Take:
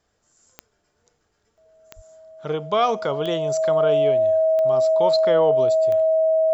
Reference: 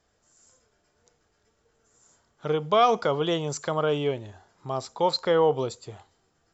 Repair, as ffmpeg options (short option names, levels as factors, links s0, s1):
-filter_complex "[0:a]adeclick=t=4,bandreject=f=640:w=30,asplit=3[s0][s1][s2];[s0]afade=t=out:st=1.95:d=0.02[s3];[s1]highpass=f=140:w=0.5412,highpass=f=140:w=1.3066,afade=t=in:st=1.95:d=0.02,afade=t=out:st=2.07:d=0.02[s4];[s2]afade=t=in:st=2.07:d=0.02[s5];[s3][s4][s5]amix=inputs=3:normalize=0"